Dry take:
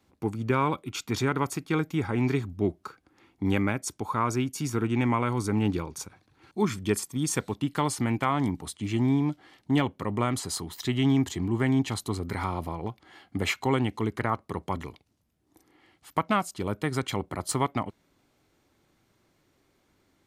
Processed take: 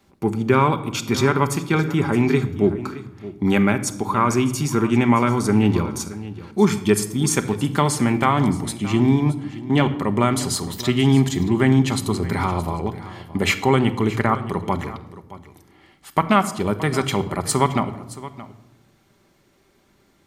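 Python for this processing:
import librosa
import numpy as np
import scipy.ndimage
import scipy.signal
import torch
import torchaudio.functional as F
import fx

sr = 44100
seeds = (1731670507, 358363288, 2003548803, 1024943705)

p1 = fx.high_shelf(x, sr, hz=7200.0, db=-8.5, at=(9.29, 9.81))
p2 = p1 + fx.echo_single(p1, sr, ms=621, db=-16.5, dry=0)
p3 = fx.room_shoebox(p2, sr, seeds[0], volume_m3=3400.0, walls='furnished', distance_m=1.2)
y = p3 * librosa.db_to_amplitude(7.5)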